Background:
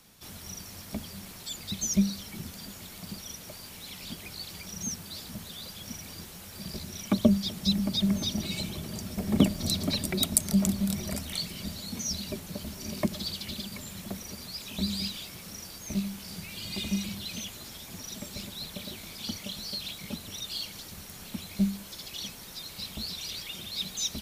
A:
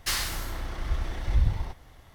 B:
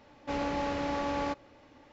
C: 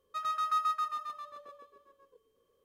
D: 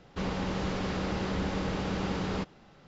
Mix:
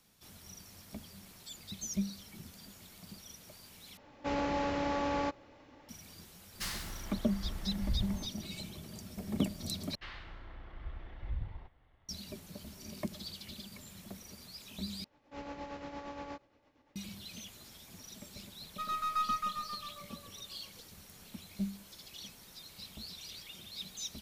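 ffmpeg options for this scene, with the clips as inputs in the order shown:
ffmpeg -i bed.wav -i cue0.wav -i cue1.wav -i cue2.wav -filter_complex "[2:a]asplit=2[link_01][link_02];[1:a]asplit=2[link_03][link_04];[0:a]volume=-10dB[link_05];[link_04]lowpass=frequency=3300:width=0.5412,lowpass=frequency=3300:width=1.3066[link_06];[link_02]tremolo=f=8.6:d=0.51[link_07];[3:a]aeval=exprs='if(lt(val(0),0),0.708*val(0),val(0))':channel_layout=same[link_08];[link_05]asplit=4[link_09][link_10][link_11][link_12];[link_09]atrim=end=3.974[link_13];[link_01]atrim=end=1.92,asetpts=PTS-STARTPTS,volume=-1dB[link_14];[link_10]atrim=start=5.886:end=9.954[link_15];[link_06]atrim=end=2.14,asetpts=PTS-STARTPTS,volume=-15dB[link_16];[link_11]atrim=start=12.086:end=15.044[link_17];[link_07]atrim=end=1.92,asetpts=PTS-STARTPTS,volume=-10dB[link_18];[link_12]atrim=start=16.956[link_19];[link_03]atrim=end=2.14,asetpts=PTS-STARTPTS,volume=-11dB,afade=type=in:duration=0.004:curve=hsin,afade=type=out:start_time=2.136:duration=0.004:curve=hsin,adelay=6540[link_20];[link_08]atrim=end=2.64,asetpts=PTS-STARTPTS,volume=-1.5dB,afade=type=in:duration=0.004:curve=hsin,afade=type=out:start_time=2.636:duration=0.004:curve=hsin,adelay=18640[link_21];[link_13][link_14]acrossfade=duration=0.004:curve1=hsin:curve2=hsin[link_22];[link_22][link_15]acrossfade=duration=0.004:curve1=hsin:curve2=hsin[link_23];[link_23][link_16]acrossfade=duration=0.004:curve1=hsin:curve2=hsin[link_24];[link_24][link_17]acrossfade=duration=0.004:curve1=hsin:curve2=hsin[link_25];[link_25][link_18]acrossfade=duration=0.004:curve1=hsin:curve2=hsin[link_26];[link_26][link_19]acrossfade=duration=0.004:curve1=hsin:curve2=hsin[link_27];[link_27][link_20][link_21]amix=inputs=3:normalize=0" out.wav

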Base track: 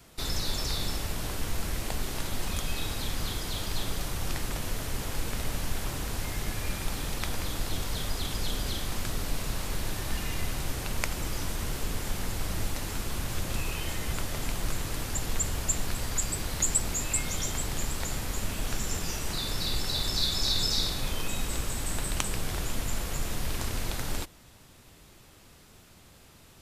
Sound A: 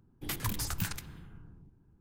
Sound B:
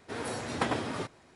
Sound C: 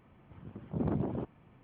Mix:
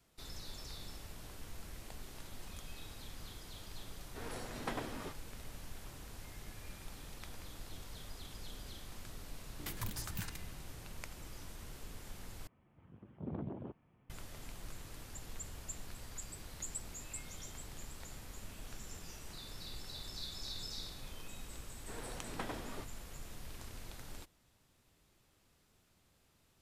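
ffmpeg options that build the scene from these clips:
ffmpeg -i bed.wav -i cue0.wav -i cue1.wav -i cue2.wav -filter_complex "[2:a]asplit=2[link_01][link_02];[0:a]volume=-17dB,asplit=2[link_03][link_04];[link_03]atrim=end=12.474[link_05];[3:a]atrim=end=1.63,asetpts=PTS-STARTPTS,volume=-10dB[link_06];[link_04]atrim=start=14.096[link_07];[link_01]atrim=end=1.35,asetpts=PTS-STARTPTS,volume=-10.5dB,afade=type=in:duration=0.004:curve=hsin,afade=type=out:start_time=1.346:duration=0.004:curve=hsin,adelay=4060[link_08];[1:a]atrim=end=2,asetpts=PTS-STARTPTS,volume=-8dB,afade=type=in:duration=0.004:curve=hsin,afade=type=out:start_time=1.996:duration=0.004:curve=hsin,adelay=9370[link_09];[link_02]atrim=end=1.35,asetpts=PTS-STARTPTS,volume=-12.5dB,afade=type=in:duration=0.004:curve=hsin,afade=type=out:start_time=1.346:duration=0.004:curve=hsin,adelay=21780[link_10];[link_05][link_06]acrossfade=duration=0.004:curve1=hsin:curve2=hsin[link_11];[link_11][link_07]acrossfade=duration=0.004:curve1=hsin:curve2=hsin[link_12];[link_12][link_08][link_09][link_10]amix=inputs=4:normalize=0" out.wav

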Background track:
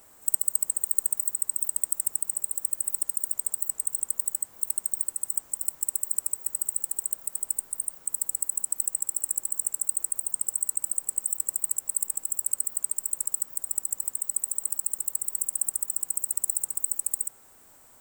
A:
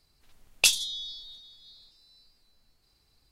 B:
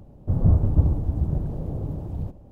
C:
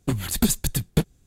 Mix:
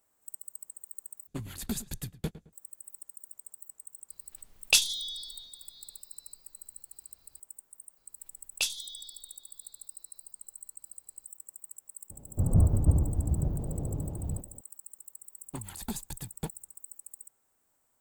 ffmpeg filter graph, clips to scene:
ffmpeg -i bed.wav -i cue0.wav -i cue1.wav -i cue2.wav -filter_complex "[3:a]asplit=2[link_01][link_02];[1:a]asplit=2[link_03][link_04];[0:a]volume=-19dB[link_05];[link_01]asplit=2[link_06][link_07];[link_07]adelay=108,lowpass=frequency=2000:poles=1,volume=-15dB,asplit=2[link_08][link_09];[link_09]adelay=108,lowpass=frequency=2000:poles=1,volume=0.32,asplit=2[link_10][link_11];[link_11]adelay=108,lowpass=frequency=2000:poles=1,volume=0.32[link_12];[link_06][link_08][link_10][link_12]amix=inputs=4:normalize=0[link_13];[link_02]equalizer=frequency=880:width_type=o:width=0.49:gain=12.5[link_14];[link_05]asplit=2[link_15][link_16];[link_15]atrim=end=1.274[link_17];[link_13]atrim=end=1.26,asetpts=PTS-STARTPTS,volume=-13.5dB[link_18];[link_16]atrim=start=2.526[link_19];[link_03]atrim=end=3.31,asetpts=PTS-STARTPTS,volume=-1dB,afade=type=in:duration=0.004:curve=hsin,afade=type=out:start_time=3.306:duration=0.004:curve=hsin,adelay=180369S[link_20];[link_04]atrim=end=3.31,asetpts=PTS-STARTPTS,volume=-9dB,afade=type=in:duration=0.004:curve=hsin,afade=type=out:start_time=3.306:duration=0.004:curve=hsin,adelay=7970[link_21];[2:a]atrim=end=2.51,asetpts=PTS-STARTPTS,volume=-4.5dB,afade=type=in:duration=0.004:curve=hsin,afade=type=out:start_time=2.506:duration=0.004:curve=hsin,adelay=12100[link_22];[link_14]atrim=end=1.26,asetpts=PTS-STARTPTS,volume=-16.5dB,afade=type=in:duration=0.004:curve=hsin,afade=type=out:start_time=1.256:duration=0.004:curve=hsin,adelay=15460[link_23];[link_17][link_18]acrossfade=duration=0.004:curve1=hsin:curve2=hsin[link_24];[link_24][link_19]acrossfade=duration=0.004:curve1=hsin:curve2=hsin[link_25];[link_25][link_20][link_21][link_22][link_23]amix=inputs=5:normalize=0" out.wav

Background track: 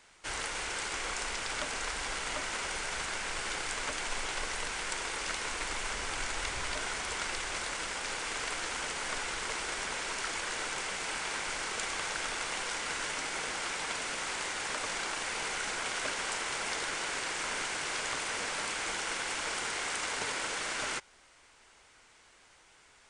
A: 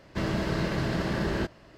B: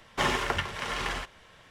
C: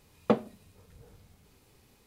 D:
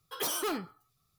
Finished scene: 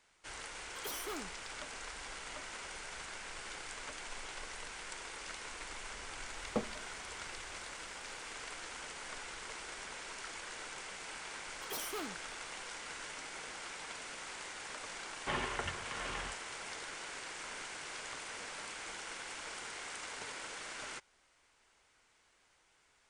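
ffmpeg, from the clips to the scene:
ffmpeg -i bed.wav -i cue0.wav -i cue1.wav -i cue2.wav -i cue3.wav -filter_complex "[4:a]asplit=2[link_01][link_02];[0:a]volume=-10dB[link_03];[2:a]lowpass=frequency=3700:width=0.5412,lowpass=frequency=3700:width=1.3066[link_04];[link_01]atrim=end=1.18,asetpts=PTS-STARTPTS,volume=-10.5dB,afade=type=in:duration=0.004:curve=hsin,afade=type=out:start_time=1.176:duration=0.004:curve=hsin,adelay=640[link_05];[3:a]atrim=end=2.06,asetpts=PTS-STARTPTS,volume=-11dB,afade=type=in:duration=0.004:curve=hsin,afade=type=out:start_time=2.056:duration=0.004:curve=hsin,adelay=276066S[link_06];[link_02]atrim=end=1.18,asetpts=PTS-STARTPTS,volume=-9.5dB,afade=type=in:duration=0.004:curve=hsin,afade=type=out:start_time=1.176:duration=0.004:curve=hsin,adelay=11500[link_07];[link_04]atrim=end=1.7,asetpts=PTS-STARTPTS,volume=-10dB,afade=type=in:duration=0.004:curve=hsin,afade=type=out:start_time=1.696:duration=0.004:curve=hsin,adelay=15090[link_08];[link_03][link_05][link_06][link_07][link_08]amix=inputs=5:normalize=0" out.wav

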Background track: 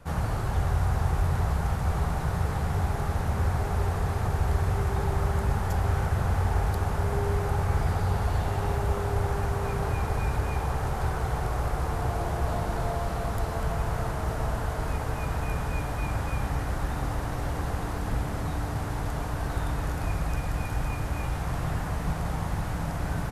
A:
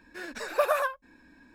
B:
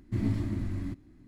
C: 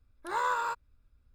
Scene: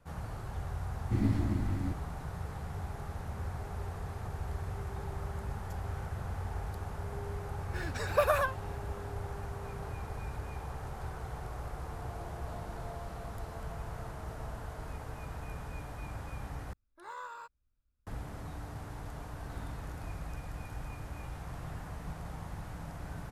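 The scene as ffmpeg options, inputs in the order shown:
ffmpeg -i bed.wav -i cue0.wav -i cue1.wav -i cue2.wav -filter_complex "[2:a]asplit=2[link_01][link_02];[0:a]volume=-12.5dB[link_03];[link_02]tiltshelf=frequency=970:gain=-6.5[link_04];[link_03]asplit=2[link_05][link_06];[link_05]atrim=end=16.734[link_07];[3:a]atrim=end=1.34,asetpts=PTS-STARTPTS,volume=-14.5dB[link_08];[link_06]atrim=start=18.066[link_09];[link_01]atrim=end=1.27,asetpts=PTS-STARTPTS,volume=-0.5dB,afade=type=in:duration=0.004:curve=hsin,afade=type=out:start_time=1.266:duration=0.004:curve=hsin,adelay=990[link_10];[1:a]atrim=end=1.54,asetpts=PTS-STARTPTS,volume=-2dB,afade=type=in:duration=0.004:curve=hsin,afade=type=out:start_time=1.536:duration=0.004:curve=hsin,adelay=7590[link_11];[link_04]atrim=end=1.27,asetpts=PTS-STARTPTS,volume=-18dB,afade=type=in:duration=0.004:curve=hsin,afade=type=out:start_time=1.266:duration=0.004:curve=hsin,adelay=19370[link_12];[link_07][link_08]acrossfade=duration=0.004:curve1=hsin:curve2=hsin[link_13];[link_13][link_09]acrossfade=duration=0.004:curve1=hsin:curve2=hsin[link_14];[link_14][link_10][link_11][link_12]amix=inputs=4:normalize=0" out.wav

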